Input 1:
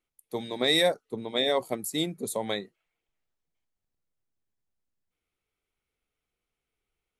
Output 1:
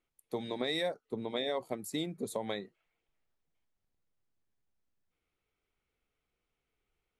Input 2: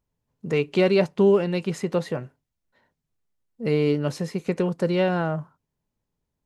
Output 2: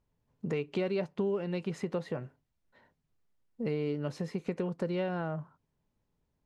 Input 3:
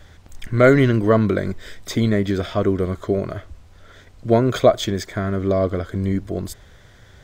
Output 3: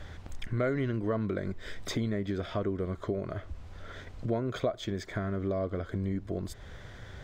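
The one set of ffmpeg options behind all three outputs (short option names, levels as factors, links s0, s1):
-af "lowpass=f=3500:p=1,acompressor=threshold=0.0158:ratio=3,volume=1.26"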